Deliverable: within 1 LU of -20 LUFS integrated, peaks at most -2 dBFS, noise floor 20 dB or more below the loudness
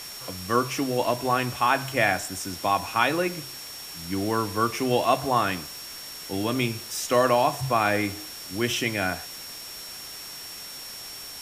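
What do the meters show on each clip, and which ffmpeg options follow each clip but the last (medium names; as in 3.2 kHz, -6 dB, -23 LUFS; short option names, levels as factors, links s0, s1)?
steady tone 5.5 kHz; tone level -40 dBFS; noise floor -39 dBFS; noise floor target -47 dBFS; loudness -26.5 LUFS; peak level -8.0 dBFS; loudness target -20.0 LUFS
-> -af "bandreject=f=5500:w=30"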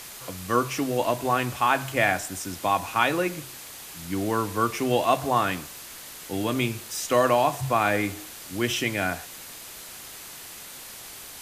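steady tone not found; noise floor -42 dBFS; noise floor target -46 dBFS
-> -af "afftdn=nr=6:nf=-42"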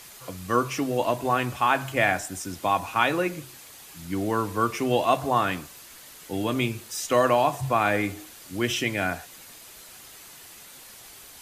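noise floor -47 dBFS; loudness -25.5 LUFS; peak level -8.0 dBFS; loudness target -20.0 LUFS
-> -af "volume=1.88"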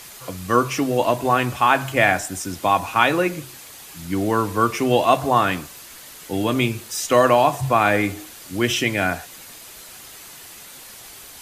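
loudness -20.0 LUFS; peak level -2.5 dBFS; noise floor -41 dBFS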